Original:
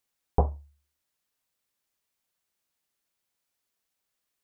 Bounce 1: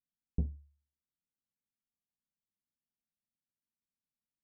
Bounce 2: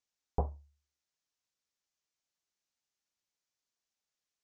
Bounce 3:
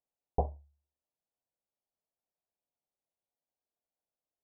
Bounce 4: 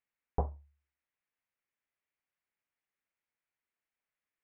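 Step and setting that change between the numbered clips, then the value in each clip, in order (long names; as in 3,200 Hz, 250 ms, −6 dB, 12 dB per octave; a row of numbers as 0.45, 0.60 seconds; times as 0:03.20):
transistor ladder low-pass, frequency: 270, 7,300, 850, 2,600 Hertz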